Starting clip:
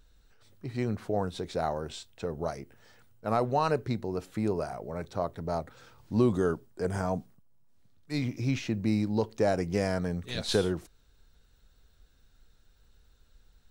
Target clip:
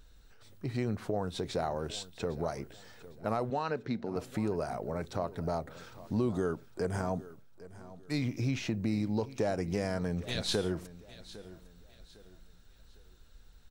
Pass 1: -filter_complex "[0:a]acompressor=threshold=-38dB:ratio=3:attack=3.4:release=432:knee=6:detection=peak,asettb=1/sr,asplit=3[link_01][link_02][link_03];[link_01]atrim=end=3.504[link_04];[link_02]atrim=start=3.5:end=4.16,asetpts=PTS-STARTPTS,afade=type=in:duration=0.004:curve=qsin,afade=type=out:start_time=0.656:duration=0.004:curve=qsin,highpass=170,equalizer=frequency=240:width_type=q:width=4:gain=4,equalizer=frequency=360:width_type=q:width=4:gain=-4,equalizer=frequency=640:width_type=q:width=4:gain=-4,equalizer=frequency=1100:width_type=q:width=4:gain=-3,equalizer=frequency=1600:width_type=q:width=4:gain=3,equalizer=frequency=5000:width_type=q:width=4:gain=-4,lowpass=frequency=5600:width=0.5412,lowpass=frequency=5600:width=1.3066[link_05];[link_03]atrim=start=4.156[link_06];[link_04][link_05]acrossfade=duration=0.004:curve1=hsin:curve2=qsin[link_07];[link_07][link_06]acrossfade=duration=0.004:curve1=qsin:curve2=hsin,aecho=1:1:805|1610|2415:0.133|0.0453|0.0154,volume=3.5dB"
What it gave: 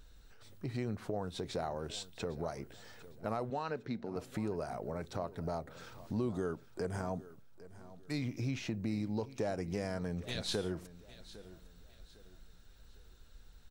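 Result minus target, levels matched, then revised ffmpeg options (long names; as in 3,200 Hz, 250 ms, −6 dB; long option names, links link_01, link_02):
downward compressor: peak gain reduction +4.5 dB
-filter_complex "[0:a]acompressor=threshold=-31dB:ratio=3:attack=3.4:release=432:knee=6:detection=peak,asettb=1/sr,asplit=3[link_01][link_02][link_03];[link_01]atrim=end=3.504[link_04];[link_02]atrim=start=3.5:end=4.16,asetpts=PTS-STARTPTS,afade=type=in:duration=0.004:curve=qsin,afade=type=out:start_time=0.656:duration=0.004:curve=qsin,highpass=170,equalizer=frequency=240:width_type=q:width=4:gain=4,equalizer=frequency=360:width_type=q:width=4:gain=-4,equalizer=frequency=640:width_type=q:width=4:gain=-4,equalizer=frequency=1100:width_type=q:width=4:gain=-3,equalizer=frequency=1600:width_type=q:width=4:gain=3,equalizer=frequency=5000:width_type=q:width=4:gain=-4,lowpass=frequency=5600:width=0.5412,lowpass=frequency=5600:width=1.3066[link_05];[link_03]atrim=start=4.156[link_06];[link_04][link_05]acrossfade=duration=0.004:curve1=hsin:curve2=qsin[link_07];[link_07][link_06]acrossfade=duration=0.004:curve1=qsin:curve2=hsin,aecho=1:1:805|1610|2415:0.133|0.0453|0.0154,volume=3.5dB"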